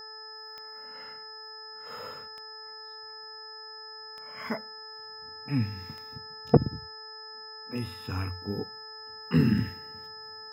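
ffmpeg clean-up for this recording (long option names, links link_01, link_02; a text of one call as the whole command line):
ffmpeg -i in.wav -af "adeclick=threshold=4,bandreject=frequency=436.1:width_type=h:width=4,bandreject=frequency=872.2:width_type=h:width=4,bandreject=frequency=1308.3:width_type=h:width=4,bandreject=frequency=1744.4:width_type=h:width=4,bandreject=frequency=5100:width=30" out.wav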